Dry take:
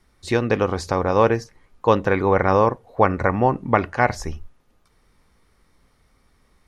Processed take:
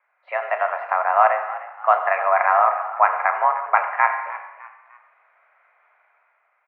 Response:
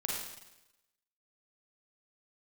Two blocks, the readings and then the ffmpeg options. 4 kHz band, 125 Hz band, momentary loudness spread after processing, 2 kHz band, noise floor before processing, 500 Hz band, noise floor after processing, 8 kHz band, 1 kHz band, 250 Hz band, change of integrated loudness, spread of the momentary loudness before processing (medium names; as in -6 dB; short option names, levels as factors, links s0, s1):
under -10 dB, under -40 dB, 11 LU, +3.5 dB, -62 dBFS, -5.0 dB, -67 dBFS, no reading, +4.5 dB, under -40 dB, +0.5 dB, 6 LU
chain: -filter_complex "[0:a]dynaudnorm=f=110:g=11:m=2.51,asplit=2[s0][s1];[1:a]atrim=start_sample=2205,adelay=35[s2];[s1][s2]afir=irnorm=-1:irlink=0,volume=0.316[s3];[s0][s3]amix=inputs=2:normalize=0,highpass=f=510:t=q:w=0.5412,highpass=f=510:t=q:w=1.307,lowpass=f=2100:t=q:w=0.5176,lowpass=f=2100:t=q:w=0.7071,lowpass=f=2100:t=q:w=1.932,afreqshift=190,asplit=4[s4][s5][s6][s7];[s5]adelay=303,afreqshift=55,volume=0.158[s8];[s6]adelay=606,afreqshift=110,volume=0.0569[s9];[s7]adelay=909,afreqshift=165,volume=0.0207[s10];[s4][s8][s9][s10]amix=inputs=4:normalize=0"